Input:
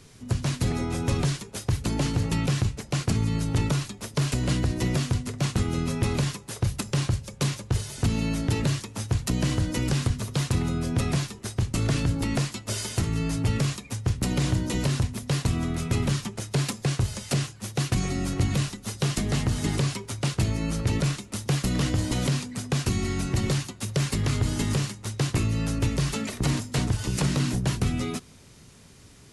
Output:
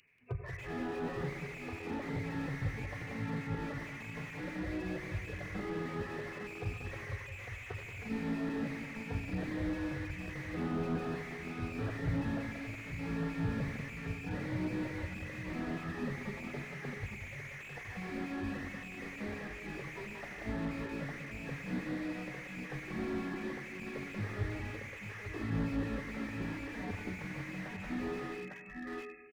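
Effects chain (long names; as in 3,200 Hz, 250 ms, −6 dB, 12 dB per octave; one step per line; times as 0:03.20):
hearing-aid frequency compression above 1,600 Hz 4 to 1
spectral tilt +2.5 dB per octave
downward compressor 5 to 1, threshold −30 dBFS, peak gain reduction 9.5 dB
brickwall limiter −28.5 dBFS, peak gain reduction 9.5 dB
noise reduction from a noise print of the clip's start 29 dB
amplitude tremolo 0.74 Hz, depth 43%
multi-tap delay 184/853 ms −6.5/−7.5 dB
on a send at −8.5 dB: convolution reverb RT60 1.2 s, pre-delay 72 ms
on the sum: slew-rate limiting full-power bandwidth 4.3 Hz
level +7 dB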